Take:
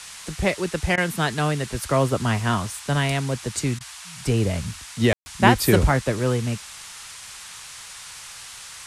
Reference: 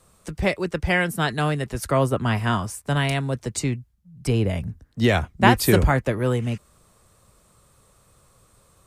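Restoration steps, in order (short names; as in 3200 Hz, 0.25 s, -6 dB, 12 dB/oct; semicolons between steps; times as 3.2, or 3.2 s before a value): room tone fill 5.13–5.26; interpolate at 0.96/3.79, 15 ms; noise print and reduce 18 dB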